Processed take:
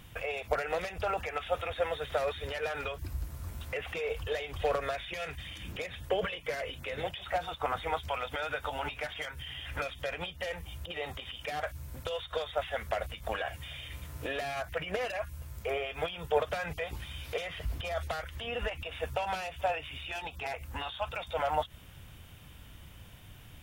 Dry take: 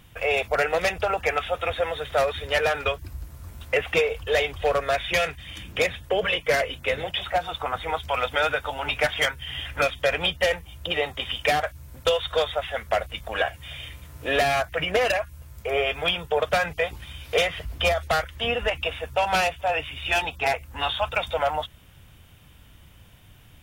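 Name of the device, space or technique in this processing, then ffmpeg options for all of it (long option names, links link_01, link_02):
de-esser from a sidechain: -filter_complex "[0:a]asplit=2[link_01][link_02];[link_02]highpass=4100,apad=whole_len=1041775[link_03];[link_01][link_03]sidechaincompress=threshold=-46dB:ratio=4:attack=0.55:release=87"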